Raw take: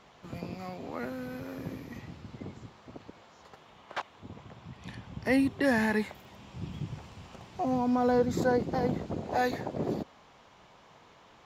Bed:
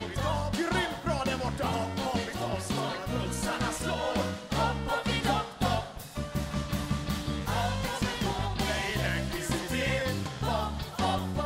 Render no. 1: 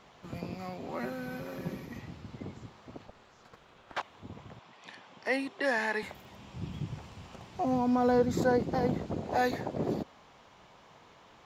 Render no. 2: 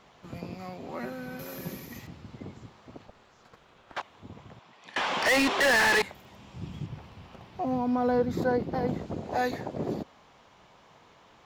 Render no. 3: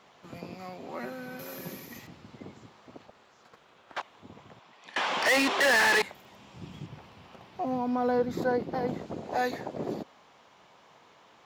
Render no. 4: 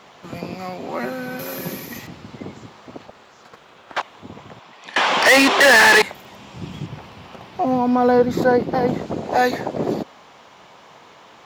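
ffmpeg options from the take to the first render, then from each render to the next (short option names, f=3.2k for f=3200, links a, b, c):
-filter_complex "[0:a]asettb=1/sr,asplit=3[a][b][c];[a]atrim=end=0.884[d];[b]atrim=start=0.88:end=1.86,asetpts=PTS-STARTPTS,afade=t=in:d=0.004:c=qsin,afade=t=out:st=0.976:d=0.004:c=qsin,aecho=1:1:5.3:0.65,atrim=end_sample=43218[e];[c]atrim=start=1.856[f];[d][e]acrossfade=d=0.004:c1=hsin:c2=qsin[g];[g][f]acrossfade=d=0.004:c1=qsin:c2=hsin,asplit=3[h][i][j];[h]afade=t=out:st=3.06:d=0.02[k];[i]aeval=exprs='val(0)*sin(2*PI*310*n/s)':c=same,afade=t=in:st=3.06:d=0.02,afade=t=out:st=3.94:d=0.02[l];[j]afade=t=in:st=3.94:d=0.02[m];[k][l][m]amix=inputs=3:normalize=0,asettb=1/sr,asplit=3[n][o][p];[n]atrim=end=4.594[q];[o]atrim=start=4.59:end=6.03,asetpts=PTS-STARTPTS,afade=t=in:d=0.004:c=qsin,afade=t=out:st=1.436:d=0.004:c=qsin,highpass=480,lowpass=7.8k[r];[p]atrim=start=6.026[s];[q][r]acrossfade=d=0.004:c1=hsin:c2=qsin[t];[t][s]acrossfade=d=0.004:c1=qsin:c2=hsin"
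-filter_complex "[0:a]asettb=1/sr,asplit=3[a][b][c];[a]atrim=end=1.394[d];[b]atrim=start=1.39:end=2.07,asetpts=PTS-STARTPTS,afade=t=in:d=0.004:c=qsin,afade=t=out:st=0.676:d=0.004:c=qsin,aemphasis=mode=production:type=75fm[e];[c]atrim=start=2.066[f];[d][e]acrossfade=d=0.004:c1=hsin:c2=qsin[g];[g][f]acrossfade=d=0.004:c1=qsin:c2=hsin,asettb=1/sr,asplit=3[h][i][j];[h]atrim=end=4.964[k];[i]atrim=start=4.96:end=6.02,asetpts=PTS-STARTPTS,afade=t=in:d=0.004:c=qsin,afade=t=out:st=1.056:d=0.004:c=qsin,asplit=2[l][m];[m]highpass=f=720:p=1,volume=36dB,asoftclip=type=tanh:threshold=-16dB[n];[l][n]amix=inputs=2:normalize=0,lowpass=f=5k:p=1,volume=-6dB[o];[j]atrim=start=6.016[p];[k][o]acrossfade=d=0.004:c1=hsin:c2=qsin[q];[q][p]acrossfade=d=0.004:c1=qsin:c2=hsin,asettb=1/sr,asplit=3[r][s][t];[r]atrim=end=6.864[u];[s]atrim=start=6.86:end=8.88,asetpts=PTS-STARTPTS,afade=t=in:d=0.004:c=qsin,afade=t=out:st=2.016:d=0.004:c=qsin,equalizer=f=7.5k:w=1.2:g=-9.5[v];[t]atrim=start=8.876[w];[u][v]acrossfade=d=0.004:c1=hsin:c2=qsin[x];[x][w]acrossfade=d=0.004:c1=qsin:c2=hsin"
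-af "highpass=f=230:p=1"
-af "volume=11.5dB"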